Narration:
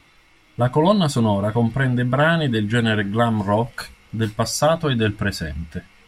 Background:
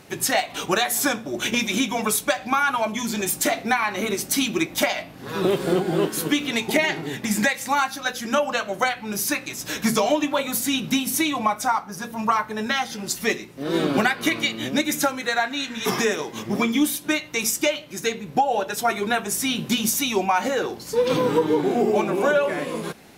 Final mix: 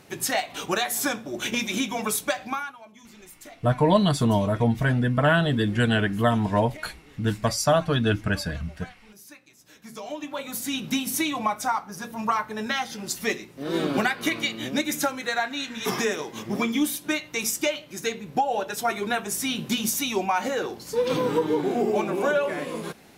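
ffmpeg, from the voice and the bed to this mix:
ffmpeg -i stem1.wav -i stem2.wav -filter_complex "[0:a]adelay=3050,volume=-3dB[link_01];[1:a]volume=16dB,afade=type=out:start_time=2.41:duration=0.33:silence=0.105925,afade=type=in:start_time=9.87:duration=1.14:silence=0.1[link_02];[link_01][link_02]amix=inputs=2:normalize=0" out.wav

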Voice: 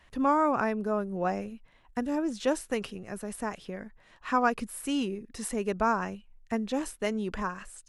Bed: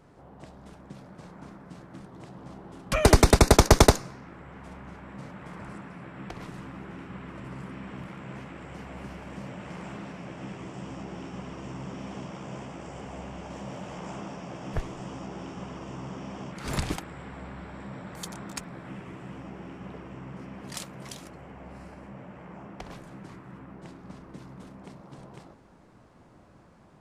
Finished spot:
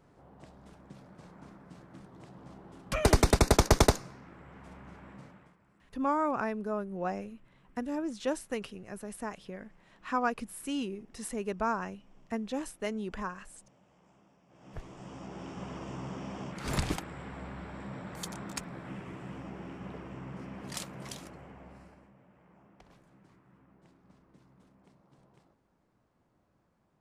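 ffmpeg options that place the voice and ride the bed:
ffmpeg -i stem1.wav -i stem2.wav -filter_complex "[0:a]adelay=5800,volume=-4.5dB[link_01];[1:a]volume=18.5dB,afade=type=out:start_time=5.07:duration=0.5:silence=0.1,afade=type=in:start_time=14.48:duration=1.27:silence=0.0595662,afade=type=out:start_time=21.13:duration=1:silence=0.16788[link_02];[link_01][link_02]amix=inputs=2:normalize=0" out.wav

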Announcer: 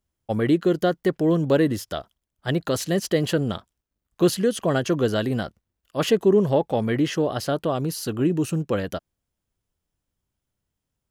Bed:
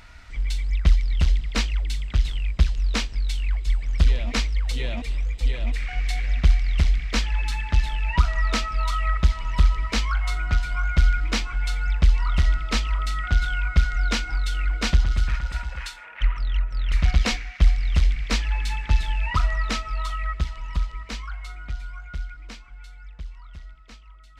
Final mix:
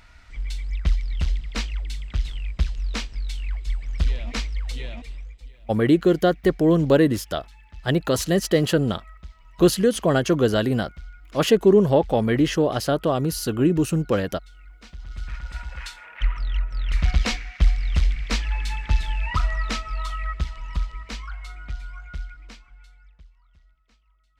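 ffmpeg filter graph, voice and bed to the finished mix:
ffmpeg -i stem1.wav -i stem2.wav -filter_complex "[0:a]adelay=5400,volume=2.5dB[link_01];[1:a]volume=17.5dB,afade=type=out:start_time=4.72:duration=0.78:silence=0.11885,afade=type=in:start_time=14.96:duration=0.97:silence=0.0841395,afade=type=out:start_time=22.11:duration=1.21:silence=0.16788[link_02];[link_01][link_02]amix=inputs=2:normalize=0" out.wav

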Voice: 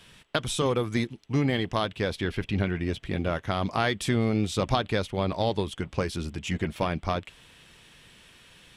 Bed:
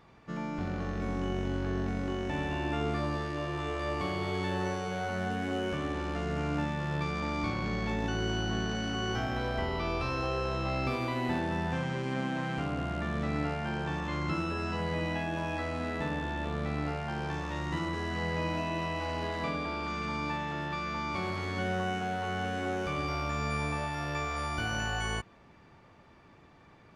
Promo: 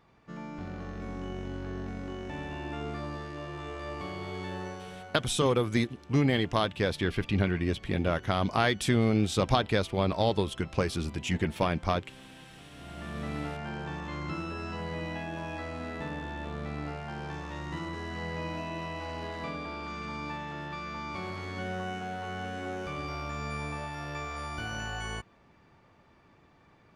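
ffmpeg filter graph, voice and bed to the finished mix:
ffmpeg -i stem1.wav -i stem2.wav -filter_complex "[0:a]adelay=4800,volume=0dB[link_01];[1:a]volume=11dB,afade=type=out:start_time=4.55:duration=0.74:silence=0.188365,afade=type=in:start_time=12.72:duration=0.52:silence=0.158489[link_02];[link_01][link_02]amix=inputs=2:normalize=0" out.wav

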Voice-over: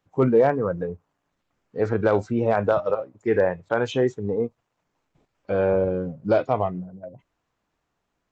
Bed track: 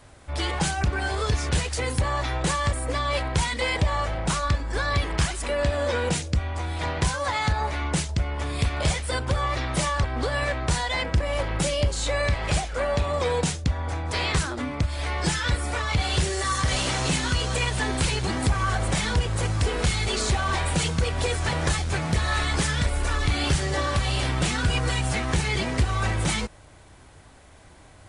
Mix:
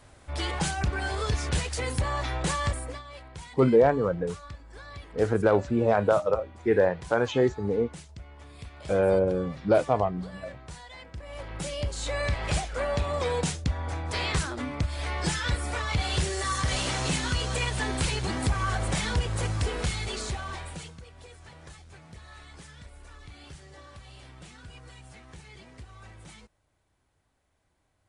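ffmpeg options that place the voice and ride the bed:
ffmpeg -i stem1.wav -i stem2.wav -filter_complex "[0:a]adelay=3400,volume=-1.5dB[link_01];[1:a]volume=12dB,afade=type=out:start_time=2.7:duration=0.33:silence=0.16788,afade=type=in:start_time=11.14:duration=1.27:silence=0.16788,afade=type=out:start_time=19.47:duration=1.55:silence=0.1[link_02];[link_01][link_02]amix=inputs=2:normalize=0" out.wav

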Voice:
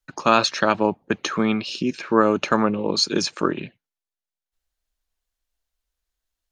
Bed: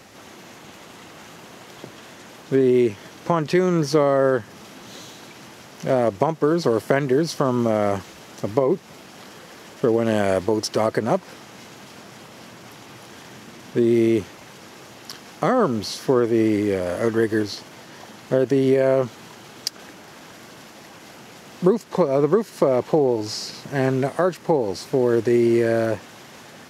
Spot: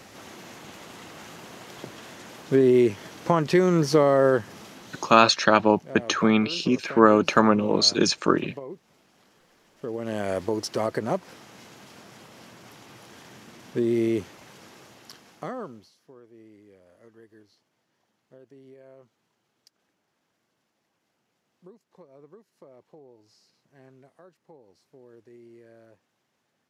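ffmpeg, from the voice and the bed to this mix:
ffmpeg -i stem1.wav -i stem2.wav -filter_complex "[0:a]adelay=4850,volume=1dB[link_01];[1:a]volume=12dB,afade=type=out:start_time=4.5:duration=0.87:silence=0.125893,afade=type=in:start_time=9.72:duration=0.76:silence=0.223872,afade=type=out:start_time=14.64:duration=1.27:silence=0.0473151[link_02];[link_01][link_02]amix=inputs=2:normalize=0" out.wav

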